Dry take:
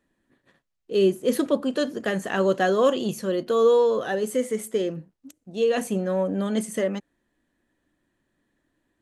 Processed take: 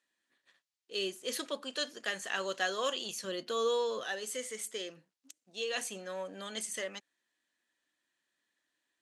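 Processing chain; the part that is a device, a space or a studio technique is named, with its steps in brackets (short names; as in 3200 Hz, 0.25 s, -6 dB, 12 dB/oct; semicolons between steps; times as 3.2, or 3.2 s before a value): piezo pickup straight into a mixer (LPF 5300 Hz 12 dB/oct; differentiator); 3.24–4.04 low shelf 280 Hz +11.5 dB; gain +7 dB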